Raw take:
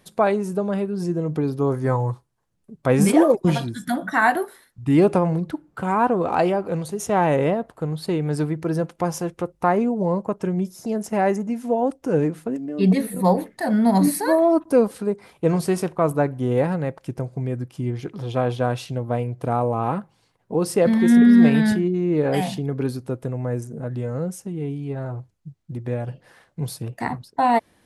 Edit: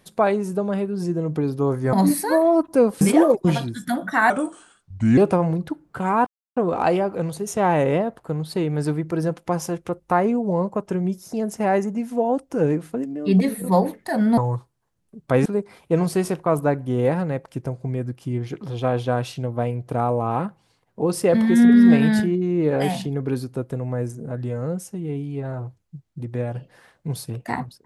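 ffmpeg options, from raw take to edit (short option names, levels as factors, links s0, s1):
-filter_complex "[0:a]asplit=8[s0][s1][s2][s3][s4][s5][s6][s7];[s0]atrim=end=1.932[s8];[s1]atrim=start=13.898:end=14.982[s9];[s2]atrim=start=3.008:end=4.304[s10];[s3]atrim=start=4.3:end=5,asetpts=PTS-STARTPTS,asetrate=35280,aresample=44100[s11];[s4]atrim=start=4.996:end=6.09,asetpts=PTS-STARTPTS,afade=t=out:st=1.09:d=0.004:c=hsin,apad=pad_dur=0.3[s12];[s5]atrim=start=6.09:end=13.902,asetpts=PTS-STARTPTS,afade=t=in:d=0.004:c=hsin[s13];[s6]atrim=start=1.928:end=3.012[s14];[s7]atrim=start=14.978[s15];[s8][s9]acrossfade=d=0.004:c1=hsin:c2=hsin[s16];[s16][s10]acrossfade=d=0.004:c1=hsin:c2=hsin[s17];[s17][s11]acrossfade=d=0.004:c1=hsin:c2=hsin[s18];[s12][s13]concat=n=2:v=0:a=1[s19];[s18][s19]acrossfade=d=0.004:c1=hsin:c2=hsin[s20];[s20][s14]acrossfade=d=0.004:c1=hsin:c2=hsin[s21];[s21][s15]acrossfade=d=0.004:c1=hsin:c2=hsin"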